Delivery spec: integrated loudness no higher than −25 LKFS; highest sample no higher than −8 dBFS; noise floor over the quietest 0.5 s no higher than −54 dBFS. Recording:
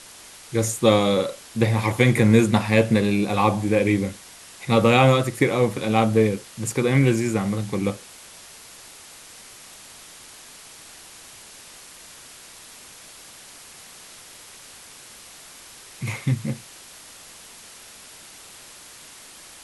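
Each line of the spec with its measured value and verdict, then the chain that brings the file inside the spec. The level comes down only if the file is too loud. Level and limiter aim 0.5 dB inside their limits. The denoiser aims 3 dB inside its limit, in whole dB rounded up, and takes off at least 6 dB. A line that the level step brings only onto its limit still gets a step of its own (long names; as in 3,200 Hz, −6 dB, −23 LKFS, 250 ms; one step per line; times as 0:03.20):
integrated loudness −21.0 LKFS: out of spec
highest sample −3.0 dBFS: out of spec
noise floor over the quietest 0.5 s −45 dBFS: out of spec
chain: broadband denoise 8 dB, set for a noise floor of −45 dBFS
level −4.5 dB
brickwall limiter −8.5 dBFS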